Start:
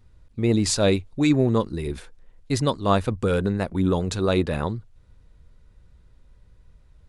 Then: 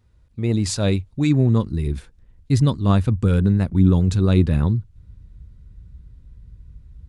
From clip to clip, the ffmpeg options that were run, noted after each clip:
-af "highpass=41,asubboost=boost=7.5:cutoff=230,volume=0.75"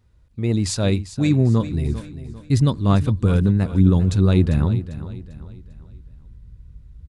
-af "aecho=1:1:397|794|1191|1588:0.211|0.0845|0.0338|0.0135"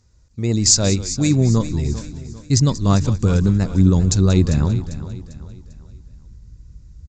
-filter_complex "[0:a]asplit=4[s0][s1][s2][s3];[s1]adelay=184,afreqshift=-120,volume=0.178[s4];[s2]adelay=368,afreqshift=-240,volume=0.0603[s5];[s3]adelay=552,afreqshift=-360,volume=0.0207[s6];[s0][s4][s5][s6]amix=inputs=4:normalize=0,aexciter=amount=7.7:drive=4.4:freq=4800,aresample=16000,aresample=44100,volume=1.12"

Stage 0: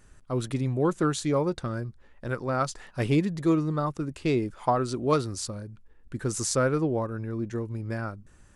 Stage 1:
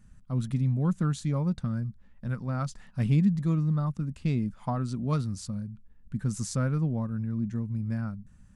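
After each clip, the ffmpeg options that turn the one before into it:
-af "lowshelf=f=270:t=q:w=3:g=9,volume=0.376"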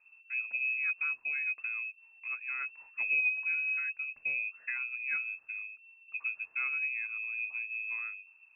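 -af "lowpass=f=2300:t=q:w=0.5098,lowpass=f=2300:t=q:w=0.6013,lowpass=f=2300:t=q:w=0.9,lowpass=f=2300:t=q:w=2.563,afreqshift=-2700,volume=0.447"

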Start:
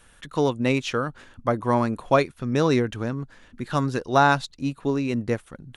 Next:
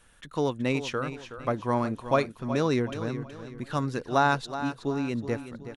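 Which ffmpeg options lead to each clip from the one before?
-af "aecho=1:1:372|744|1116|1488:0.266|0.104|0.0405|0.0158,volume=0.562"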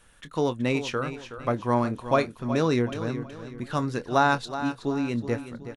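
-filter_complex "[0:a]asplit=2[s0][s1];[s1]adelay=25,volume=0.224[s2];[s0][s2]amix=inputs=2:normalize=0,volume=1.19"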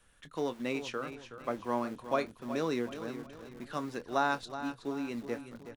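-filter_complex "[0:a]bandreject=f=900:w=23,acrossover=split=160|3200[s0][s1][s2];[s0]aeval=exprs='(mod(158*val(0)+1,2)-1)/158':c=same[s3];[s3][s1][s2]amix=inputs=3:normalize=0,volume=0.398"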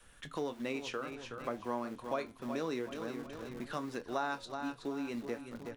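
-af "adynamicequalizer=threshold=0.00224:dfrequency=130:dqfactor=1.5:tfrequency=130:tqfactor=1.5:attack=5:release=100:ratio=0.375:range=2:mode=cutabove:tftype=bell,flanger=delay=8.4:depth=2:regen=-80:speed=0.53:shape=sinusoidal,acompressor=threshold=0.00282:ratio=2,volume=3.16"

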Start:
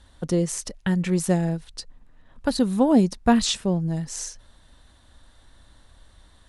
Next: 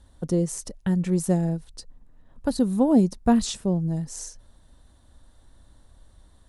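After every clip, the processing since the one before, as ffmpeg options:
-af "equalizer=f=2500:t=o:w=2.6:g=-10"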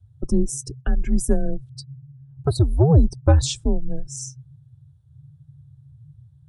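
-af "afftdn=nr=25:nf=-41,afreqshift=-150,acontrast=23"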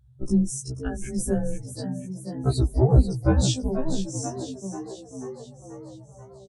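-filter_complex "[0:a]asplit=2[s0][s1];[s1]asplit=7[s2][s3][s4][s5][s6][s7][s8];[s2]adelay=487,afreqshift=76,volume=0.299[s9];[s3]adelay=974,afreqshift=152,volume=0.17[s10];[s4]adelay=1461,afreqshift=228,volume=0.0966[s11];[s5]adelay=1948,afreqshift=304,volume=0.0556[s12];[s6]adelay=2435,afreqshift=380,volume=0.0316[s13];[s7]adelay=2922,afreqshift=456,volume=0.018[s14];[s8]adelay=3409,afreqshift=532,volume=0.0102[s15];[s9][s10][s11][s12][s13][s14][s15]amix=inputs=7:normalize=0[s16];[s0][s16]amix=inputs=2:normalize=0,afftfilt=real='re*1.73*eq(mod(b,3),0)':imag='im*1.73*eq(mod(b,3),0)':win_size=2048:overlap=0.75"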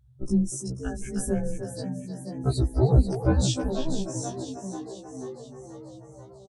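-filter_complex "[0:a]asplit=2[s0][s1];[s1]adelay=310,highpass=300,lowpass=3400,asoftclip=type=hard:threshold=0.158,volume=0.501[s2];[s0][s2]amix=inputs=2:normalize=0,volume=0.794"

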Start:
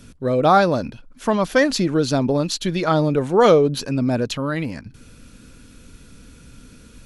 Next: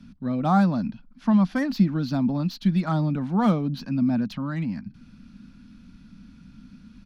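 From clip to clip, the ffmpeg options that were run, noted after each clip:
-filter_complex "[0:a]firequalizer=gain_entry='entry(120,0);entry(200,14);entry(420,-15);entry(740,0);entry(3100,-3);entry(4800,-1);entry(7500,-18)':delay=0.05:min_phase=1,acrossover=split=110|1400[s0][s1][s2];[s2]asoftclip=type=tanh:threshold=0.0447[s3];[s0][s1][s3]amix=inputs=3:normalize=0,volume=0.422"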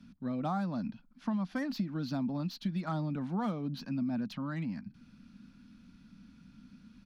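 -af "lowshelf=f=100:g=-8,acompressor=threshold=0.0631:ratio=6,volume=0.501"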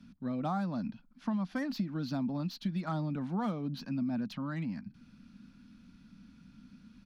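-af anull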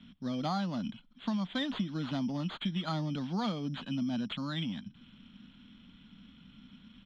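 -af "acrusher=samples=8:mix=1:aa=0.000001,lowpass=f=3300:t=q:w=8.8"

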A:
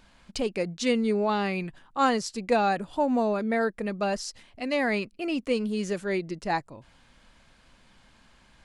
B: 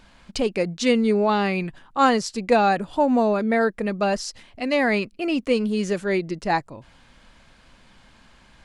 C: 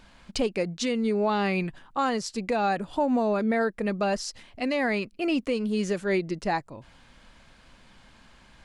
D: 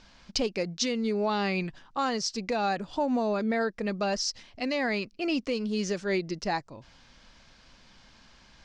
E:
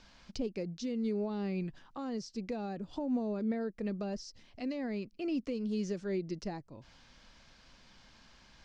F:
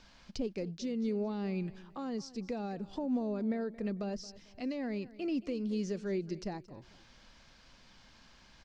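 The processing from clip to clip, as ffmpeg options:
-af "highshelf=f=8200:g=-4.5,volume=1.88"
-af "alimiter=limit=0.168:level=0:latency=1:release=300,volume=0.841"
-af "lowpass=f=5600:t=q:w=3,volume=0.708"
-filter_complex "[0:a]acrossover=split=460[s0][s1];[s1]acompressor=threshold=0.00631:ratio=6[s2];[s0][s2]amix=inputs=2:normalize=0,volume=0.668"
-af "aecho=1:1:224|448|672:0.119|0.0404|0.0137"

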